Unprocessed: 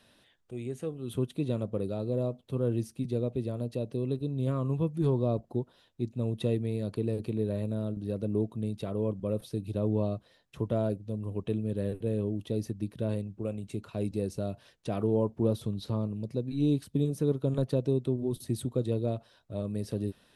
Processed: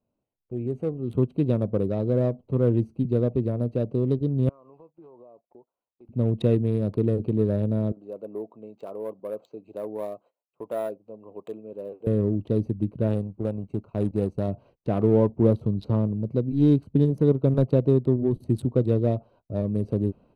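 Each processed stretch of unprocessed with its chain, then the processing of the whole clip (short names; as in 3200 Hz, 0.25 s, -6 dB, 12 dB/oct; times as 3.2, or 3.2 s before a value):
4.49–6.09 HPF 840 Hz + compressor 8:1, threshold -52 dBFS + decimation joined by straight lines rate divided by 6×
7.92–12.07 HPF 670 Hz + careless resampling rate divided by 4×, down filtered, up hold
13.07–14.48 G.711 law mismatch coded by A + bell 7600 Hz +3 dB 1.3 oct
whole clip: Wiener smoothing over 25 samples; gate -60 dBFS, range -21 dB; high shelf 2800 Hz -9.5 dB; gain +8 dB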